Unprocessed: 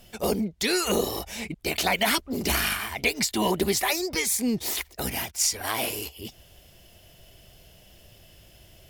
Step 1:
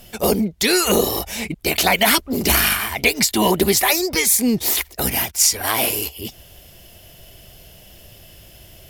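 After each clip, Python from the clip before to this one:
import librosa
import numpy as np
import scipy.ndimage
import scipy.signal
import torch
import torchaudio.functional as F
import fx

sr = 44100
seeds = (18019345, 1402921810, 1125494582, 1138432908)

y = fx.peak_eq(x, sr, hz=13000.0, db=5.5, octaves=0.63)
y = y * 10.0 ** (7.5 / 20.0)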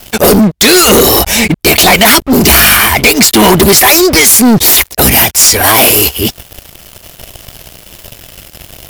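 y = fx.leveller(x, sr, passes=5)
y = y * 10.0 ** (1.5 / 20.0)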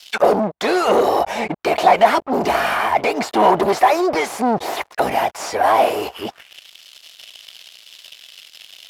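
y = fx.auto_wah(x, sr, base_hz=730.0, top_hz=4300.0, q=2.0, full_db=-7.0, direction='down')
y = y * 10.0 ** (-1.0 / 20.0)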